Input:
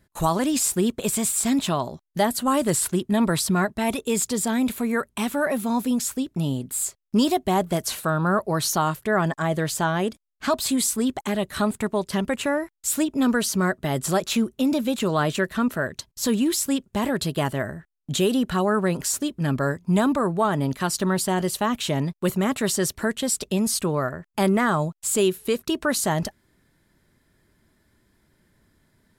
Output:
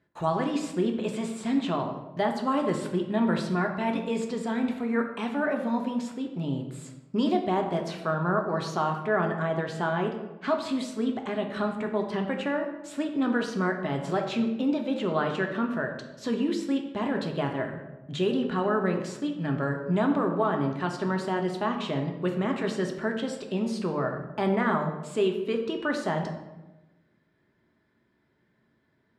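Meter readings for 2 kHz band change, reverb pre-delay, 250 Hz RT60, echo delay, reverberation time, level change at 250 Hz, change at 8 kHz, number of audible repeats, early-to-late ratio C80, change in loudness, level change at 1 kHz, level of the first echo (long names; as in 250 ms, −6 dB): −4.0 dB, 3 ms, 1.4 s, no echo audible, 1.1 s, −4.5 dB, −22.5 dB, no echo audible, 9.0 dB, −5.0 dB, −4.0 dB, no echo audible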